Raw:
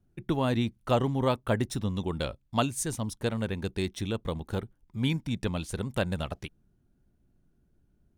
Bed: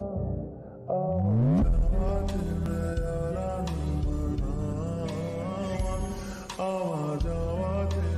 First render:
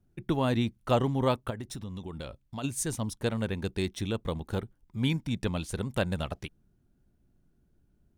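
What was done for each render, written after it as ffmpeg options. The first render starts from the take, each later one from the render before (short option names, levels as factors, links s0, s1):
-filter_complex "[0:a]asplit=3[s0][s1][s2];[s0]afade=t=out:st=1.49:d=0.02[s3];[s1]acompressor=threshold=0.0141:ratio=3:attack=3.2:release=140:knee=1:detection=peak,afade=t=in:st=1.49:d=0.02,afade=t=out:st=2.63:d=0.02[s4];[s2]afade=t=in:st=2.63:d=0.02[s5];[s3][s4][s5]amix=inputs=3:normalize=0"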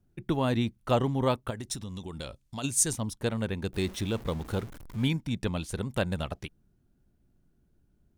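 -filter_complex "[0:a]asettb=1/sr,asplit=3[s0][s1][s2];[s0]atrim=end=1.504[s3];[s1]atrim=start=1.5:end=2.93,asetpts=PTS-STARTPTS,afade=t=in:d=0.004:c=qsin,afade=t=out:st=1.426:d=0.004:c=qsin,equalizer=f=7300:w=0.55:g=9.5[s4];[s2]atrim=start=2.926[s5];[s3][s4]acrossfade=d=0.004:c1=hsin:c2=qsin[s6];[s6][s5]acrossfade=d=0.004:c1=qsin:c2=hsin,asettb=1/sr,asplit=3[s7][s8][s9];[s7]atrim=end=3.734[s10];[s8]atrim=start=3.73:end=5.08,asetpts=PTS-STARTPTS,afade=t=in:d=0.004:c=qsin,afade=t=out:st=1.346:d=0.004:c=qsin,aeval=exprs='val(0)+0.5*0.01*sgn(val(0))':c=same[s11];[s9]atrim=start=5.076[s12];[s10][s11]acrossfade=d=0.004:c1=hsin:c2=qsin[s13];[s13][s12]acrossfade=d=0.004:c1=qsin:c2=hsin"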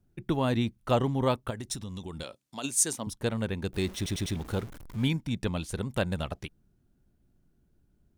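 -filter_complex "[0:a]asettb=1/sr,asplit=3[s0][s1][s2];[s0]atrim=end=2.234[s3];[s1]atrim=start=2.23:end=3.07,asetpts=PTS-STARTPTS,afade=t=in:d=0.004:c=qsin,afade=t=out:st=0.836:d=0.004:c=qsin,highpass=240[s4];[s2]atrim=start=3.066[s5];[s3][s4]acrossfade=d=0.004:c1=hsin:c2=qsin[s6];[s6][s5]acrossfade=d=0.004:c1=qsin:c2=hsin,asplit=5[s7][s8][s9][s10][s11];[s7]atrim=end=4.062[s12];[s8]atrim=start=3.958:end=4.062[s13];[s9]atrim=start=3.958:end=4.062[s14];[s10]atrim=start=3.958:end=4.062[s15];[s11]atrim=start=4.358[s16];[s12][s13]acrossfade=d=0.004:c1=hsin:c2=hsin[s17];[s17][s14]acrossfade=d=0.004:c1=hsin:c2=hsin[s18];[s18][s15]acrossfade=d=0.004:c1=hsin:c2=hsin[s19];[s19][s16]acrossfade=d=0.004:c1=hsin:c2=hsin"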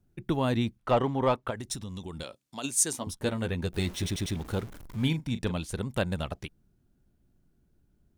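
-filter_complex "[0:a]asettb=1/sr,asplit=3[s0][s1][s2];[s0]atrim=end=0.784[s3];[s1]atrim=start=0.78:end=1.56,asetpts=PTS-STARTPTS,afade=t=in:d=0.004:c=qsin,afade=t=out:st=0.776:d=0.004:c=qsin,asplit=2[s4][s5];[s5]highpass=f=720:p=1,volume=3.98,asoftclip=type=tanh:threshold=0.251[s6];[s4][s6]amix=inputs=2:normalize=0,lowpass=f=1600:p=1,volume=0.501[s7];[s2]atrim=start=1.556[s8];[s3][s7]acrossfade=d=0.004:c1=hsin:c2=qsin[s9];[s9][s8]acrossfade=d=0.004:c1=qsin:c2=hsin,asettb=1/sr,asplit=3[s10][s11][s12];[s10]atrim=end=2.934[s13];[s11]atrim=start=2.93:end=4.1,asetpts=PTS-STARTPTS,afade=t=in:d=0.004:c=qsin,afade=t=out:st=1.166:d=0.004:c=qsin,asplit=2[s14][s15];[s15]adelay=12,volume=0.562[s16];[s14][s16]amix=inputs=2:normalize=0,atrim=end_sample=51597[s17];[s12]atrim=start=4.096[s18];[s13][s17]acrossfade=d=0.004:c1=hsin:c2=qsin[s19];[s19][s18]acrossfade=d=0.004:c1=qsin:c2=hsin,asettb=1/sr,asplit=3[s20][s21][s22];[s20]atrim=end=4.674[s23];[s21]atrim=start=4.67:end=5.56,asetpts=PTS-STARTPTS,afade=t=in:d=0.004:c=qsin,afade=t=out:st=0.886:d=0.004:c=qsin,asplit=2[s24][s25];[s25]adelay=39,volume=0.251[s26];[s24][s26]amix=inputs=2:normalize=0,atrim=end_sample=39249[s27];[s22]atrim=start=5.556[s28];[s23][s27]acrossfade=d=0.004:c1=hsin:c2=qsin[s29];[s29][s28]acrossfade=d=0.004:c1=qsin:c2=hsin"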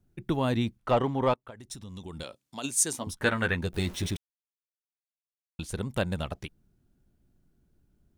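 -filter_complex "[0:a]asettb=1/sr,asplit=3[s0][s1][s2];[s0]atrim=end=3.174[s3];[s1]atrim=start=3.17:end=3.59,asetpts=PTS-STARTPTS,afade=t=in:d=0.004:c=qsin,afade=t=out:st=0.416:d=0.004:c=qsin,equalizer=f=1600:t=o:w=1.4:g=14[s4];[s2]atrim=start=3.586[s5];[s3][s4]acrossfade=d=0.004:c1=hsin:c2=qsin[s6];[s6][s5]acrossfade=d=0.004:c1=qsin:c2=hsin,asplit=4[s7][s8][s9][s10];[s7]atrim=end=1.34,asetpts=PTS-STARTPTS,afade=t=out:st=1.336:d=0.004:c=hsin:silence=0.0794328[s11];[s8]atrim=start=1.34:end=4.17,asetpts=PTS-STARTPTS,afade=t=in:d=0.91:silence=0.0794328,afade=t=out:st=2.826:d=0.004:c=hsin[s12];[s9]atrim=start=4.17:end=5.59,asetpts=PTS-STARTPTS,volume=0[s13];[s10]atrim=start=5.59,asetpts=PTS-STARTPTS,afade=t=in:d=0.004:c=hsin[s14];[s11][s12][s13][s14]concat=n=4:v=0:a=1"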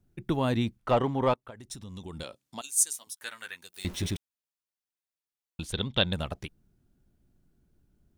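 -filter_complex "[0:a]asettb=1/sr,asplit=3[s0][s1][s2];[s0]atrim=end=2.614[s3];[s1]atrim=start=2.61:end=3.85,asetpts=PTS-STARTPTS,afade=t=in:d=0.004:c=qsin,afade=t=out:st=1.236:d=0.004:c=qsin,aderivative[s4];[s2]atrim=start=3.846[s5];[s3][s4]acrossfade=d=0.004:c1=hsin:c2=qsin[s6];[s6][s5]acrossfade=d=0.004:c1=qsin:c2=hsin,asettb=1/sr,asplit=3[s7][s8][s9];[s7]atrim=end=5.724[s10];[s8]atrim=start=5.72:end=6.13,asetpts=PTS-STARTPTS,afade=t=in:d=0.004:c=qsin,afade=t=out:st=0.406:d=0.004:c=qsin,lowpass=f=3500:t=q:w=8.2[s11];[s9]atrim=start=6.126[s12];[s10][s11]acrossfade=d=0.004:c1=hsin:c2=qsin[s13];[s13][s12]acrossfade=d=0.004:c1=qsin:c2=hsin"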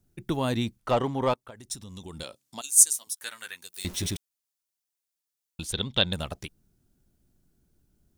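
-af "bass=f=250:g=-1,treble=f=4000:g=8"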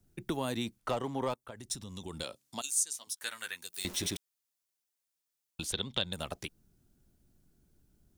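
-filter_complex "[0:a]acrossover=split=220|6400[s0][s1][s2];[s0]acompressor=threshold=0.00562:ratio=4[s3];[s1]acompressor=threshold=0.0251:ratio=4[s4];[s2]acompressor=threshold=0.0126:ratio=4[s5];[s3][s4][s5]amix=inputs=3:normalize=0"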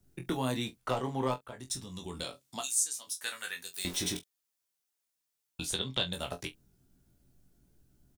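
-filter_complex "[0:a]asplit=2[s0][s1];[s1]adelay=23,volume=0.447[s2];[s0][s2]amix=inputs=2:normalize=0,aecho=1:1:16|46:0.398|0.141"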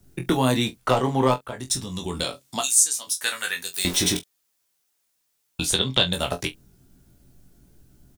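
-af "volume=3.76"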